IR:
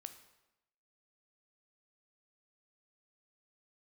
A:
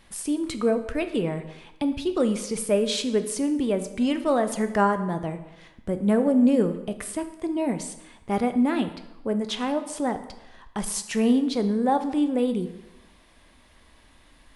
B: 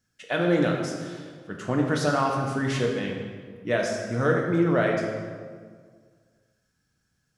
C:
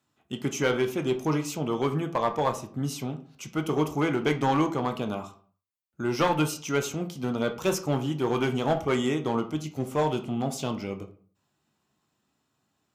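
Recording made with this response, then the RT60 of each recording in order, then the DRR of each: A; 0.90, 1.8, 0.45 s; 8.5, -0.5, 5.5 dB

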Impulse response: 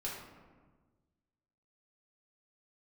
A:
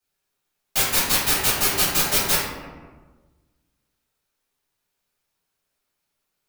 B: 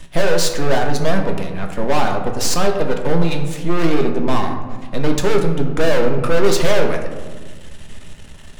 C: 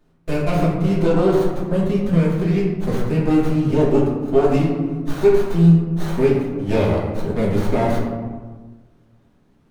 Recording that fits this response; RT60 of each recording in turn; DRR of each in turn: C; 1.4, 1.4, 1.4 s; -12.5, 2.5, -5.5 dB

